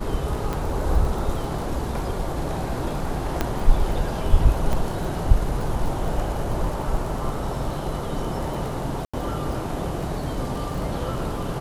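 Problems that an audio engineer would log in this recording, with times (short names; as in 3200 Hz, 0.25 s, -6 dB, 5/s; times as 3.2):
crackle 19/s -29 dBFS
0.53 pop
3.41 pop -8 dBFS
4.73 gap 2.9 ms
9.05–9.13 gap 85 ms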